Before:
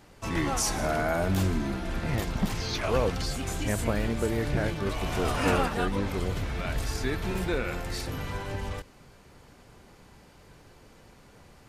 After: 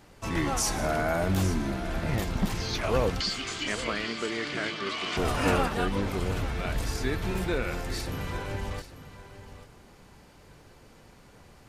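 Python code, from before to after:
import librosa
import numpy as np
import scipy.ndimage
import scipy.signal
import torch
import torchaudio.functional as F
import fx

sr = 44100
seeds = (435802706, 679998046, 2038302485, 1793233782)

y = fx.cabinet(x, sr, low_hz=300.0, low_slope=12, high_hz=7800.0, hz=(530.0, 830.0, 1200.0, 2100.0, 3100.0, 4600.0), db=(-9, -8, 6, 6, 9, 8), at=(3.2, 5.17))
y = y + 10.0 ** (-14.0 / 20.0) * np.pad(y, (int(843 * sr / 1000.0), 0))[:len(y)]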